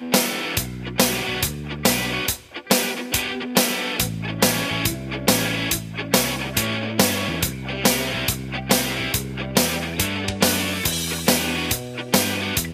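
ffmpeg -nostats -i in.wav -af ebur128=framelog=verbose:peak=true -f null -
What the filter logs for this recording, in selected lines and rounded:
Integrated loudness:
  I:         -21.3 LUFS
  Threshold: -31.3 LUFS
Loudness range:
  LRA:         0.9 LU
  Threshold: -41.3 LUFS
  LRA low:   -21.8 LUFS
  LRA high:  -20.9 LUFS
True peak:
  Peak:       -1.5 dBFS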